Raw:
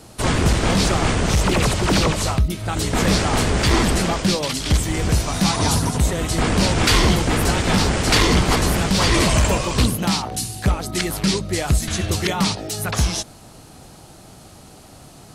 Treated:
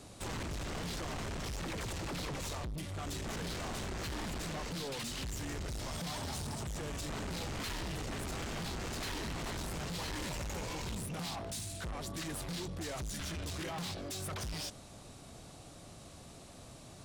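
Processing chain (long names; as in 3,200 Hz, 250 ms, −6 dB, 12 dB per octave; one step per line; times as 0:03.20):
brickwall limiter −14 dBFS, peak gain reduction 7 dB
soft clipping −29 dBFS, distortion −7 dB
speed change −10%
level −8.5 dB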